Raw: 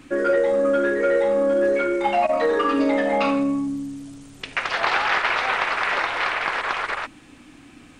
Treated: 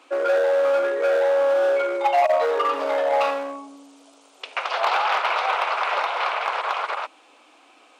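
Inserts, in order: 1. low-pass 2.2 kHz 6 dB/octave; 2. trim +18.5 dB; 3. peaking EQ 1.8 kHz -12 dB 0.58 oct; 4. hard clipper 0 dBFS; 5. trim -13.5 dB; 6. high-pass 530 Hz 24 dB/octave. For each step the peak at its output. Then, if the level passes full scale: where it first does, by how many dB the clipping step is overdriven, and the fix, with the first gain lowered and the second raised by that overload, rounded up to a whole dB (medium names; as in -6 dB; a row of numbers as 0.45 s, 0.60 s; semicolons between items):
-10.0 dBFS, +8.5 dBFS, +7.0 dBFS, 0.0 dBFS, -13.5 dBFS, -9.0 dBFS; step 2, 7.0 dB; step 2 +11.5 dB, step 5 -6.5 dB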